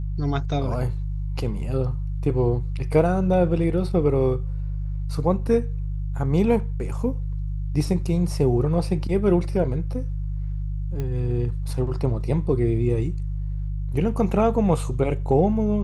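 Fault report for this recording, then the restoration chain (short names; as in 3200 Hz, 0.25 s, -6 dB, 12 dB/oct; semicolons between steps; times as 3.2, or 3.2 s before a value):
hum 50 Hz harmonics 3 -27 dBFS
11 pop -18 dBFS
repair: de-click; de-hum 50 Hz, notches 3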